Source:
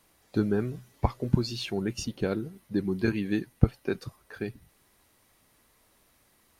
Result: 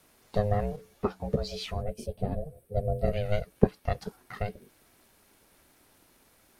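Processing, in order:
ring modulation 310 Hz
low-shelf EQ 140 Hz +3.5 dB
in parallel at −1.5 dB: downward compressor, threshold −36 dBFS, peak gain reduction 20 dB
0:01.82–0:03.13: on the sum: gain on a spectral selection 750–7,800 Hz −12 dB
0:00.76–0:02.77: string-ensemble chorus

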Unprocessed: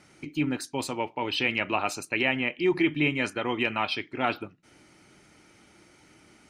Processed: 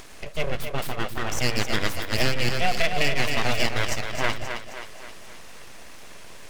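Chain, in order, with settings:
full-wave rectification
in parallel at 0 dB: upward compression, threshold −29 dBFS
on the sum: echo with a time of its own for lows and highs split 310 Hz, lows 124 ms, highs 265 ms, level −7 dB
0:02.18–0:03.69: multiband upward and downward compressor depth 100%
level −2.5 dB

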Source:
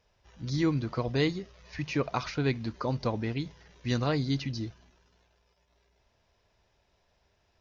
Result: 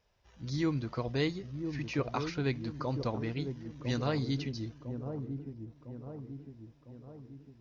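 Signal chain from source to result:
delay with a low-pass on its return 1,004 ms, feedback 52%, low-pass 620 Hz, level −6 dB
level −4 dB

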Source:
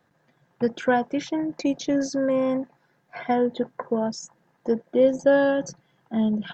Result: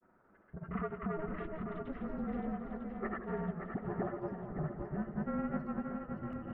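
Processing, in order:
all-pass dispersion highs, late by 85 ms, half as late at 520 Hz
in parallel at +2 dB: brickwall limiter −19 dBFS, peak gain reduction 10 dB
on the sum: harmonic generator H 4 −15 dB, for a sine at −6 dBFS
downward compressor 6 to 1, threshold −27 dBFS, peak gain reduction 16 dB
single-sideband voice off tune −310 Hz 400–2,300 Hz
granular cloud, spray 213 ms, pitch spread up and down by 0 semitones
feedback echo with a long and a short gap by turns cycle 948 ms, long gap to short 1.5 to 1, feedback 43%, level −6 dB
feedback echo with a swinging delay time 170 ms, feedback 54%, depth 113 cents, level −11.5 dB
level −5 dB

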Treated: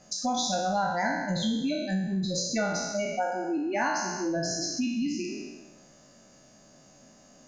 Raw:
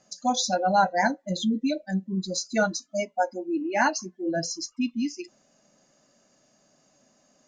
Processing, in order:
peak hold with a decay on every bin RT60 0.96 s
low-shelf EQ 120 Hz +11 dB
downward compressor 2.5 to 1, threshold −36 dBFS, peak gain reduction 14.5 dB
level +4.5 dB

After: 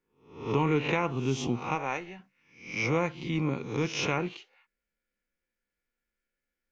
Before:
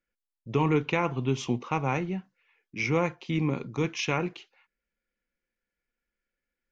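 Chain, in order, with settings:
peak hold with a rise ahead of every peak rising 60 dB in 0.52 s
0:01.74–0:02.19: parametric band 77 Hz → 240 Hz −15 dB 2.2 octaves
level −2.5 dB

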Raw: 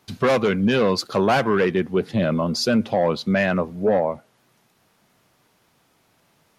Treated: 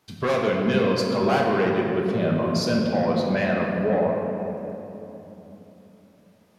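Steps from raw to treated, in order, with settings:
rectangular room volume 180 cubic metres, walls hard, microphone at 0.52 metres
level −6 dB

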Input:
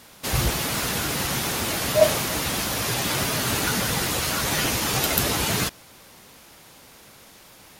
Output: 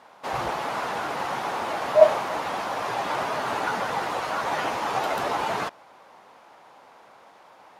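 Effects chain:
resonant band-pass 850 Hz, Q 1.8
level +6.5 dB

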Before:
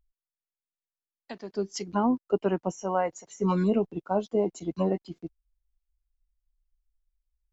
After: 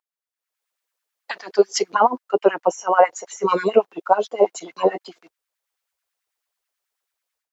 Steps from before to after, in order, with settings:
automatic gain control gain up to 16 dB
auto-filter high-pass sine 9.2 Hz 450–1,800 Hz
level −2 dB

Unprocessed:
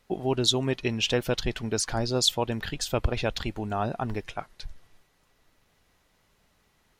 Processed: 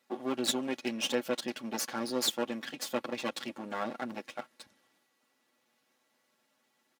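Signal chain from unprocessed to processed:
lower of the sound and its delayed copy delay 8.1 ms
high-pass filter 180 Hz 24 dB per octave
comb filter 3.6 ms, depth 43%
level −5.5 dB

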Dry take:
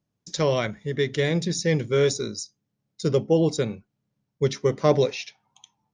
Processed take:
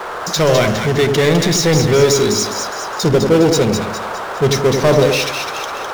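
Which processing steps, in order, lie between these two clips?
noise in a band 380–1,500 Hz −49 dBFS
power curve on the samples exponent 0.5
echo with a time of its own for lows and highs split 1,200 Hz, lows 88 ms, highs 205 ms, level −5.5 dB
level +2 dB

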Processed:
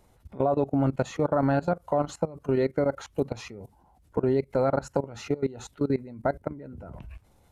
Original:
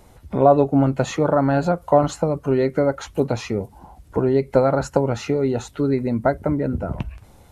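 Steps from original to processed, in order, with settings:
output level in coarse steps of 19 dB
level −3.5 dB

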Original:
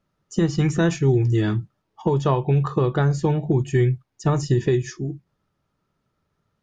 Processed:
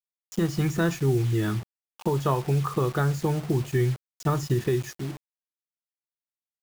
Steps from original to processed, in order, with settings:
dynamic equaliser 1,300 Hz, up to +6 dB, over −43 dBFS, Q 2.9
bit reduction 6 bits
level −5 dB

